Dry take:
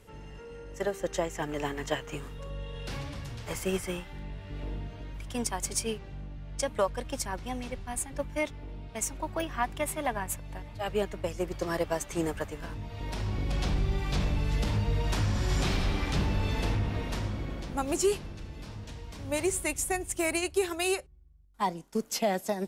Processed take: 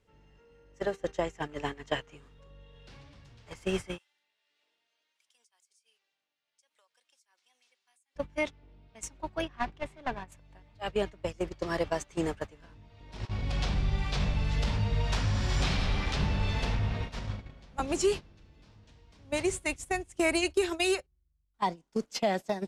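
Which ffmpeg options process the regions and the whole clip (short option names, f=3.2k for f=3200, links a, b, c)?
-filter_complex "[0:a]asettb=1/sr,asplit=3[a][b][c];[a]atrim=end=3.984[d];[b]atrim=start=3.98:end=8.16,asetpts=PTS-STARTPTS,afade=t=in:d=0.004:c=qsin,afade=t=out:st=4.176:d=0.004:c=qsin,aderivative,acompressor=threshold=-49dB:ratio=6:attack=3.2:release=140:knee=1:detection=peak,highpass=350[e];[c]atrim=start=8.156[f];[d][e]acrossfade=d=0.004:c1=hsin:c2=qsin[g];[g][f]acrossfade=d=0.004:c1=qsin:c2=hsin,asettb=1/sr,asplit=3[h][i][j];[h]atrim=end=9.484[k];[i]atrim=start=9.48:end=10.32,asetpts=PTS-STARTPTS,afade=t=in:d=0.004:c=qsin,afade=t=out:st=0.836:d=0.004:c=qsin,aemphasis=mode=reproduction:type=50fm,aeval=exprs='clip(val(0),-1,0.0168)':c=same[l];[j]atrim=start=10.316[m];[k][l]acrossfade=d=0.004:c1=hsin:c2=qsin[n];[n][m]acrossfade=d=0.004:c1=qsin:c2=hsin,asettb=1/sr,asplit=3[o][p][q];[o]atrim=end=13.254[r];[p]atrim=start=13.25:end=17.8,asetpts=PTS-STARTPTS,afade=t=in:d=0.004:c=qsin,afade=t=out:st=4.546:d=0.004:c=qsin,bandreject=f=320:w=6.7,acrossover=split=320[s][t];[s]adelay=40[u];[u][t]amix=inputs=2:normalize=0,atrim=end_sample=200655[v];[q]atrim=start=17.796[w];[r][v]acrossfade=d=0.004:c1=hsin:c2=qsin[x];[x][w]acrossfade=d=0.004:c1=qsin:c2=hsin,asettb=1/sr,asplit=3[y][z][aa];[y]atrim=end=20.194[ab];[z]atrim=start=20.19:end=20.95,asetpts=PTS-STARTPTS,afade=t=in:d=0.004:c=qsin,afade=t=out:st=0.756:d=0.004:c=qsin,highshelf=f=9k:g=2.5,aecho=1:1:3.2:0.52,atrim=end_sample=33516[ac];[aa]atrim=start=20.946[ad];[ab][ac]acrossfade=d=0.004:c1=hsin:c2=qsin[ae];[ae][ad]acrossfade=d=0.004:c1=qsin:c2=hsin,lowpass=4.7k,aemphasis=mode=production:type=cd,agate=range=-15dB:threshold=-32dB:ratio=16:detection=peak"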